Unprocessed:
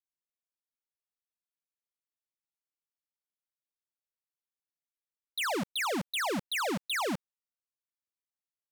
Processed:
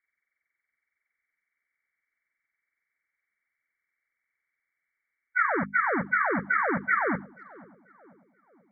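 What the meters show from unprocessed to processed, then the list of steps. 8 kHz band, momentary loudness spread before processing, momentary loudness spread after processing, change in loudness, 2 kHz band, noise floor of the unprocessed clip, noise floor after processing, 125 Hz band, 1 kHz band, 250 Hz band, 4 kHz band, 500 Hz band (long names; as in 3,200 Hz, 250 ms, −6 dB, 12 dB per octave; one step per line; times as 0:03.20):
below −35 dB, 4 LU, 4 LU, +6.0 dB, +9.5 dB, below −85 dBFS, below −85 dBFS, +4.5 dB, +8.0 dB, +4.0 dB, below −40 dB, +3.5 dB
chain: hearing-aid frequency compression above 1,100 Hz 4 to 1
dynamic equaliser 1,600 Hz, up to +5 dB, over −40 dBFS, Q 1.9
downward compressor 4 to 1, threshold −29 dBFS, peak gain reduction 8 dB
harmonic and percussive parts rebalanced percussive +8 dB
mains-hum notches 50/100/150/200/250 Hz
on a send: tape delay 486 ms, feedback 58%, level −19 dB, low-pass 1,000 Hz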